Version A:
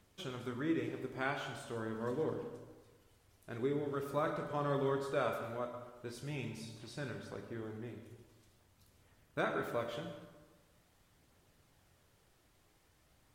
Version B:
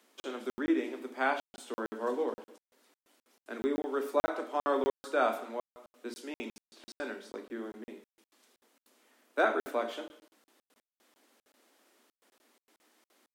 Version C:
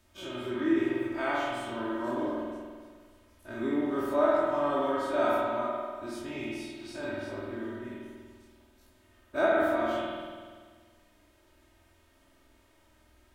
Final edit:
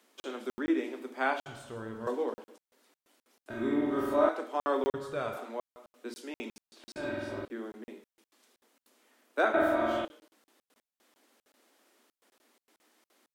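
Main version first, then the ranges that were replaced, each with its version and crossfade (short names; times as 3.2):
B
1.46–2.07 from A
3.5–4.29 from C
4.94–5.37 from A
6.96–7.45 from C
9.54–10.05 from C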